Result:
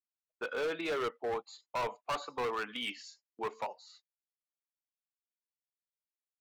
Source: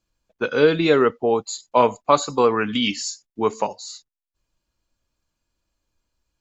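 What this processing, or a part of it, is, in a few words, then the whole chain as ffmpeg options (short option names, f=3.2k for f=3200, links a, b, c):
walkie-talkie: -af "highpass=540,lowpass=2.7k,asoftclip=type=hard:threshold=-21.5dB,agate=range=-22dB:threshold=-51dB:ratio=16:detection=peak,volume=-9dB"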